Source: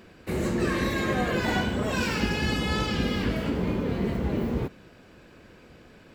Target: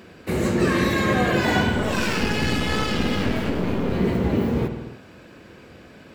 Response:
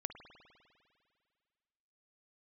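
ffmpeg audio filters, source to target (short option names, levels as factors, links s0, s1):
-filter_complex "[0:a]highpass=63,asettb=1/sr,asplit=3[s0][s1][s2];[s0]atrim=end=1.724[s3];[s1]atrim=start=1.72:end=3.93,asetpts=PTS-STARTPTS,afade=t=in:d=0.004:c=qsin,afade=t=out:st=2.206:d=0.004:c=qsin,aeval=exprs='clip(val(0),-1,0.0251)':c=same[s4];[s2]atrim=start=3.926[s5];[s3][s4]acrossfade=d=0.004:c1=hsin:c2=qsin[s6];[s6][s5]acrossfade=d=0.004:c1=qsin:c2=hsin[s7];[1:a]atrim=start_sample=2205,afade=t=out:st=0.36:d=0.01,atrim=end_sample=16317[s8];[s7][s8]afir=irnorm=-1:irlink=0,volume=2.51"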